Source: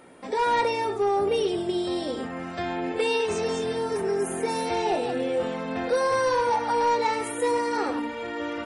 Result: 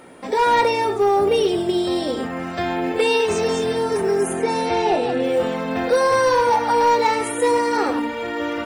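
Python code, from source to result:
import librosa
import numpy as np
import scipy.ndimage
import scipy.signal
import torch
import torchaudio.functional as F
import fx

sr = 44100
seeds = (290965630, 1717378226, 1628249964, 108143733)

y = fx.quant_companded(x, sr, bits=8)
y = fx.air_absorb(y, sr, metres=56.0, at=(4.33, 5.24))
y = y * librosa.db_to_amplitude(6.5)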